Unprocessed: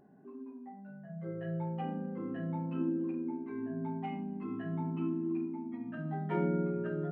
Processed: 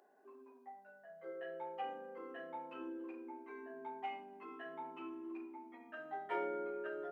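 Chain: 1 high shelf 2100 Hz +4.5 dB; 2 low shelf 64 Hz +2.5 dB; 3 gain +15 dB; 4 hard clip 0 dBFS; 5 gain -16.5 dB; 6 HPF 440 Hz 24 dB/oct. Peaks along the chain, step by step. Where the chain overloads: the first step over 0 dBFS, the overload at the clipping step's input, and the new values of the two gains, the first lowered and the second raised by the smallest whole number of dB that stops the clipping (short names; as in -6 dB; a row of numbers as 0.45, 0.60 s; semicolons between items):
-19.5, -19.5, -4.5, -4.5, -21.0, -26.5 dBFS; no overload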